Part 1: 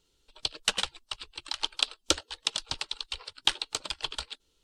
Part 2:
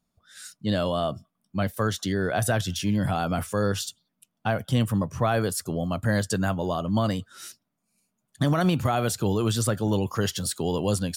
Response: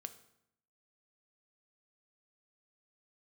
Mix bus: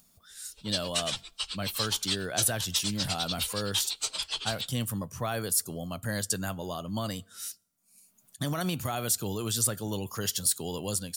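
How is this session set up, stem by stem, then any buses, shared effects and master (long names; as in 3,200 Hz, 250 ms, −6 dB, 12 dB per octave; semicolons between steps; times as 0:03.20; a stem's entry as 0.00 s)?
−1.5 dB, 0.30 s, send −8 dB, random phases in long frames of 50 ms; downward compressor 6 to 1, threshold −36 dBFS, peak gain reduction 15 dB
−14.0 dB, 0.00 s, send −12 dB, high-shelf EQ 9,600 Hz +7 dB; automatic gain control gain up to 3.5 dB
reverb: on, RT60 0.75 s, pre-delay 3 ms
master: high-shelf EQ 3,100 Hz +12 dB; upward compression, threshold −47 dBFS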